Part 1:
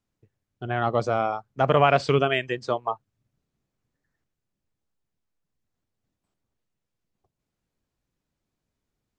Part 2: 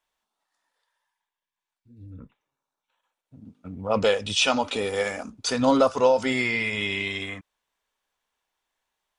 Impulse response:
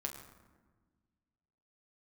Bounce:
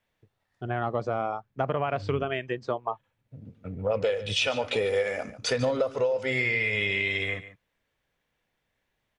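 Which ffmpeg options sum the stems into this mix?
-filter_complex "[0:a]lowpass=frequency=2100:poles=1,acompressor=threshold=-22dB:ratio=10,volume=-1dB[link_01];[1:a]equalizer=frequency=125:width_type=o:width=1:gain=10,equalizer=frequency=250:width_type=o:width=1:gain=-7,equalizer=frequency=500:width_type=o:width=1:gain=11,equalizer=frequency=1000:width_type=o:width=1:gain=-5,equalizer=frequency=2000:width_type=o:width=1:gain=8,equalizer=frequency=8000:width_type=o:width=1:gain=-5,acompressor=threshold=-21dB:ratio=16,volume=-1.5dB,asplit=2[link_02][link_03];[link_03]volume=-15dB,aecho=0:1:145:1[link_04];[link_01][link_02][link_04]amix=inputs=3:normalize=0"

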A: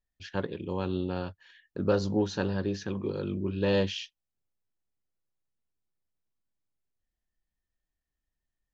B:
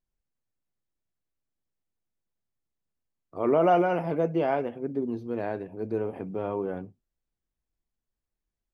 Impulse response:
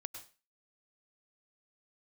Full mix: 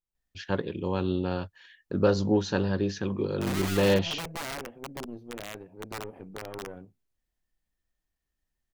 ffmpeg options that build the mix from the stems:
-filter_complex "[0:a]adelay=150,volume=3dB[link_01];[1:a]aeval=exprs='(tanh(15.8*val(0)+0.7)-tanh(0.7))/15.8':channel_layout=same,aeval=exprs='(mod(15*val(0)+1,2)-1)/15':channel_layout=same,volume=-5dB[link_02];[link_01][link_02]amix=inputs=2:normalize=0"

